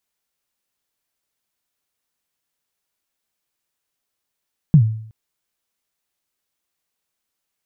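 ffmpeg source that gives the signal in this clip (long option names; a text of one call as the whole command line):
ffmpeg -f lavfi -i "aevalsrc='0.631*pow(10,-3*t/0.61)*sin(2*PI*(170*0.084/log(110/170)*(exp(log(110/170)*min(t,0.084)/0.084)-1)+110*max(t-0.084,0)))':duration=0.37:sample_rate=44100" out.wav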